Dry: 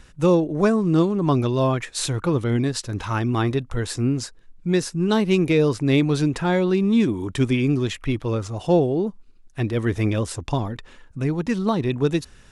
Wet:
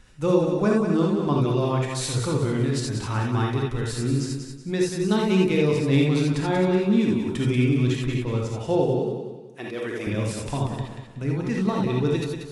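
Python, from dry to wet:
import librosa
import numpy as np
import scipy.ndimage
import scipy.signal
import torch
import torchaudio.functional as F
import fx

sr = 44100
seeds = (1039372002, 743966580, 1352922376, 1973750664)

y = fx.highpass(x, sr, hz=350.0, slope=12, at=(8.95, 10.07))
y = fx.echo_feedback(y, sr, ms=186, feedback_pct=35, wet_db=-7.0)
y = fx.rev_gated(y, sr, seeds[0], gate_ms=100, shape='rising', drr_db=-0.5)
y = F.gain(torch.from_numpy(y), -6.0).numpy()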